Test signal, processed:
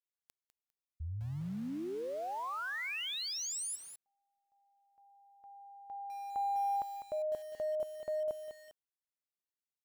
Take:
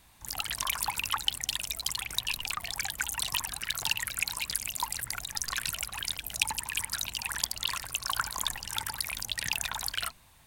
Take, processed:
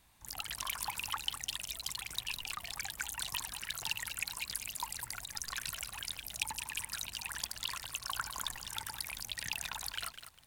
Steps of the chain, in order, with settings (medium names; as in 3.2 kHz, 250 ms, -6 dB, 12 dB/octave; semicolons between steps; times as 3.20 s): saturation -9 dBFS; bit-crushed delay 201 ms, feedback 35%, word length 7-bit, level -9 dB; trim -7 dB